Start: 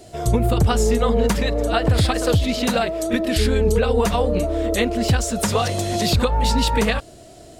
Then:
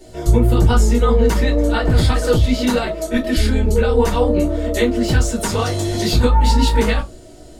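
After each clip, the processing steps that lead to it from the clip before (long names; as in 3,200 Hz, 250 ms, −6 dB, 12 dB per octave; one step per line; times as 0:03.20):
convolution reverb RT60 0.20 s, pre-delay 3 ms, DRR −3.5 dB
level −6 dB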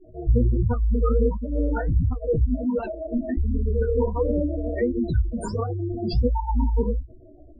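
gate on every frequency bin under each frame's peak −10 dB strong
flanger 1.4 Hz, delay 8.2 ms, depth 9.7 ms, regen −44%
level −2.5 dB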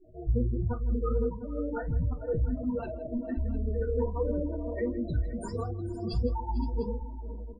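multi-tap delay 45/161/448/518/701 ms −17/−18.5/−18/−16/−17 dB
level −7.5 dB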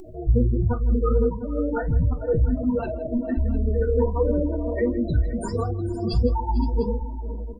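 upward compression, threshold −42 dBFS
level +8 dB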